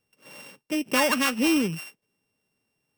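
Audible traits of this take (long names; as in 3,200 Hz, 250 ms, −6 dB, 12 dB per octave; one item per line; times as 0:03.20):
a buzz of ramps at a fixed pitch in blocks of 16 samples
AAC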